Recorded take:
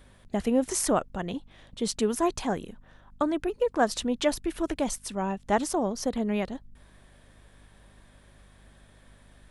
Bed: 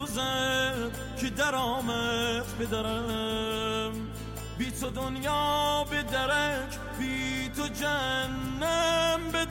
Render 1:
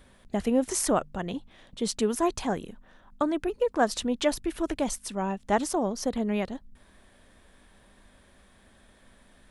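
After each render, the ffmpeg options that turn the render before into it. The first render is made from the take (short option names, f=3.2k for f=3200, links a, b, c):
-af "bandreject=f=50:t=h:w=4,bandreject=f=100:t=h:w=4,bandreject=f=150:t=h:w=4"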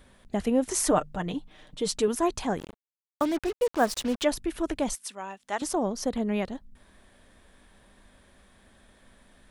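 -filter_complex "[0:a]asettb=1/sr,asplit=3[a][b][c];[a]atrim=end=0.754[d];[b]atrim=start=0.75:end=2.08,asetpts=PTS-STARTPTS,afade=t=in:d=0.004:c=qsin,afade=t=out:st=1.326:d=0.004:c=qsin,aecho=1:1:6.6:0.57,atrim=end_sample=58653[e];[c]atrim=start=2.076[f];[d][e]acrossfade=d=0.004:c1=hsin:c2=qsin[g];[g][f]acrossfade=d=0.004:c1=qsin:c2=hsin,asplit=3[h][i][j];[h]afade=t=out:st=2.58:d=0.02[k];[i]acrusher=bits=5:mix=0:aa=0.5,afade=t=in:st=2.58:d=0.02,afade=t=out:st=4.22:d=0.02[l];[j]afade=t=in:st=4.22:d=0.02[m];[k][l][m]amix=inputs=3:normalize=0,asettb=1/sr,asplit=3[n][o][p];[n]atrim=end=4.954[q];[o]atrim=start=4.95:end=5.62,asetpts=PTS-STARTPTS,afade=t=in:d=0.004:c=qsin,afade=t=out:st=0.666:d=0.004:c=qsin,highpass=f=1.4k:p=1[r];[p]atrim=start=5.616[s];[q][r]acrossfade=d=0.004:c1=hsin:c2=qsin[t];[t][s]acrossfade=d=0.004:c1=qsin:c2=hsin"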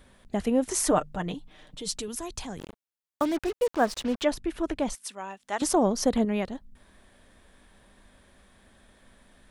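-filter_complex "[0:a]asettb=1/sr,asplit=3[a][b][c];[a]atrim=end=1.344[d];[b]atrim=start=1.34:end=2.6,asetpts=PTS-STARTPTS,afade=t=in:d=0.004:c=qsin,afade=t=out:st=1.256:d=0.004:c=qsin,acrossover=split=150|3000[e][f][g];[f]acompressor=threshold=-45dB:ratio=2:attack=3.2:release=140:knee=2.83:detection=peak[h];[e][h][g]amix=inputs=3:normalize=0[i];[c]atrim=start=2.596[j];[d][i]acrossfade=d=0.004:c1=hsin:c2=qsin[k];[k][j]acrossfade=d=0.004:c1=qsin:c2=hsin,asettb=1/sr,asplit=3[l][m][n];[l]atrim=end=3.764[o];[m]atrim=start=3.76:end=4.98,asetpts=PTS-STARTPTS,afade=t=in:d=0.004:c=qsin,afade=t=out:st=1.216:d=0.004:c=qsin,highshelf=f=7k:g=-9.5[p];[n]atrim=start=4.976[q];[o][p]acrossfade=d=0.004:c1=hsin:c2=qsin[r];[r][q]acrossfade=d=0.004:c1=qsin:c2=hsin,asettb=1/sr,asplit=3[s][t][u];[s]atrim=end=5.604[v];[t]atrim=start=5.6:end=6.25,asetpts=PTS-STARTPTS,afade=t=in:d=0.004:c=qsin,afade=t=out:st=0.646:d=0.004:c=qsin,acontrast=24[w];[u]atrim=start=6.246[x];[v][w]acrossfade=d=0.004:c1=hsin:c2=qsin[y];[y][x]acrossfade=d=0.004:c1=qsin:c2=hsin"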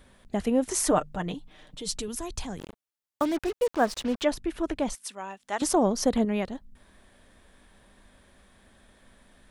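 -filter_complex "[0:a]asettb=1/sr,asplit=3[a][b][c];[a]atrim=end=1.884[d];[b]atrim=start=1.88:end=2.56,asetpts=PTS-STARTPTS,afade=t=in:d=0.004:c=qsin,afade=t=out:st=0.676:d=0.004:c=qsin,lowshelf=f=130:g=6.5[e];[c]atrim=start=2.556[f];[d][e]acrossfade=d=0.004:c1=hsin:c2=qsin[g];[g][f]acrossfade=d=0.004:c1=qsin:c2=hsin"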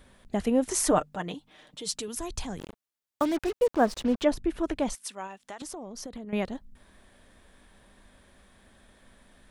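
-filter_complex "[0:a]asettb=1/sr,asplit=3[a][b][c];[a]atrim=end=1.024[d];[b]atrim=start=1.02:end=2.17,asetpts=PTS-STARTPTS,afade=t=in:d=0.004:c=qsin,afade=t=out:st=1.146:d=0.004:c=qsin,highpass=f=250:p=1[e];[c]atrim=start=2.166[f];[d][e]acrossfade=d=0.004:c1=hsin:c2=qsin[g];[g][f]acrossfade=d=0.004:c1=qsin:c2=hsin,asettb=1/sr,asplit=3[h][i][j];[h]atrim=end=3.594[k];[i]atrim=start=3.59:end=4.59,asetpts=PTS-STARTPTS,afade=t=in:d=0.004:c=qsin,afade=t=out:st=0.996:d=0.004:c=qsin,tiltshelf=f=810:g=3.5[l];[j]atrim=start=4.586[m];[k][l]acrossfade=d=0.004:c1=hsin:c2=qsin[n];[n][m]acrossfade=d=0.004:c1=qsin:c2=hsin,asettb=1/sr,asplit=3[o][p][q];[o]atrim=end=5.264[r];[p]atrim=start=5.26:end=6.33,asetpts=PTS-STARTPTS,afade=t=in:d=0.004:c=qsin,afade=t=out:st=1.066:d=0.004:c=qsin,acompressor=threshold=-36dB:ratio=12:attack=3.2:release=140:knee=1:detection=peak[s];[q]atrim=start=6.326[t];[r][s]acrossfade=d=0.004:c1=hsin:c2=qsin[u];[u][t]acrossfade=d=0.004:c1=qsin:c2=hsin"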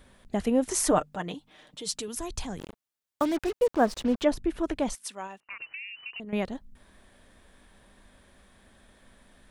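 -filter_complex "[0:a]asettb=1/sr,asplit=3[a][b][c];[a]atrim=end=5.404[d];[b]atrim=start=5.4:end=6.2,asetpts=PTS-STARTPTS,afade=t=in:d=0.004:c=qsin,afade=t=out:st=0.796:d=0.004:c=qsin,lowpass=f=2.6k:t=q:w=0.5098,lowpass=f=2.6k:t=q:w=0.6013,lowpass=f=2.6k:t=q:w=0.9,lowpass=f=2.6k:t=q:w=2.563,afreqshift=-3000[e];[c]atrim=start=6.196[f];[d][e]acrossfade=d=0.004:c1=hsin:c2=qsin[g];[g][f]acrossfade=d=0.004:c1=qsin:c2=hsin"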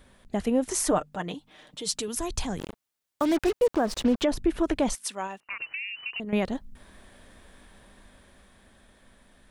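-af "dynaudnorm=f=330:g=11:m=5.5dB,alimiter=limit=-14.5dB:level=0:latency=1:release=80"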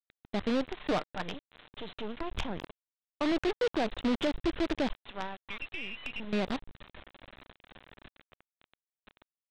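-af "aresample=8000,acrusher=bits=5:dc=4:mix=0:aa=0.000001,aresample=44100,asoftclip=type=tanh:threshold=-24dB"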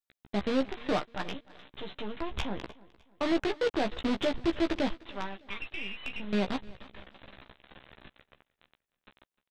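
-filter_complex "[0:a]asplit=2[a][b];[b]adelay=15,volume=-6dB[c];[a][c]amix=inputs=2:normalize=0,aecho=1:1:304|608|912:0.0794|0.0302|0.0115"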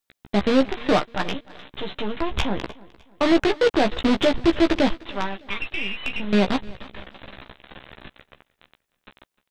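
-af "volume=10dB"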